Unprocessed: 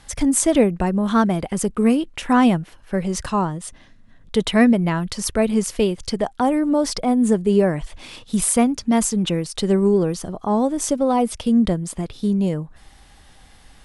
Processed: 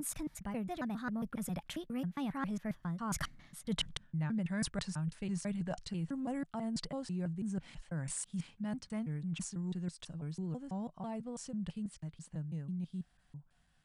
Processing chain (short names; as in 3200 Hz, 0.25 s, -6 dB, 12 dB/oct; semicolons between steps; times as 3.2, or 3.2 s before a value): slices in reverse order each 0.15 s, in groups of 3; Doppler pass-by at 3.78, 33 m/s, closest 5.3 m; fifteen-band EQ 160 Hz +10 dB, 400 Hz -8 dB, 1600 Hz +4 dB; reverse; compressor 8:1, threshold -45 dBFS, peak gain reduction 28.5 dB; reverse; wow and flutter 20 cents; gain +10 dB